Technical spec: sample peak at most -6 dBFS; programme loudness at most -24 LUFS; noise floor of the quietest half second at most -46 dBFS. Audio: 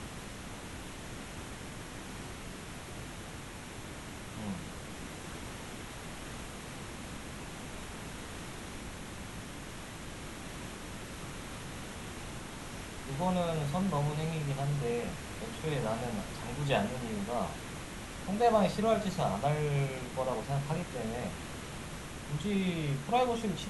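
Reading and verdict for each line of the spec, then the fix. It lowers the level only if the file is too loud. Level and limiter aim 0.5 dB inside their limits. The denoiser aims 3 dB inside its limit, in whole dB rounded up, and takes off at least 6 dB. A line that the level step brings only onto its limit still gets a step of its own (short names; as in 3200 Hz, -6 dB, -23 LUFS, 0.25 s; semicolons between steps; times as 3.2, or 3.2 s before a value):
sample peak -14.5 dBFS: OK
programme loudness -36.5 LUFS: OK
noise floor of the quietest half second -44 dBFS: fail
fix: denoiser 6 dB, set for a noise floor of -44 dBFS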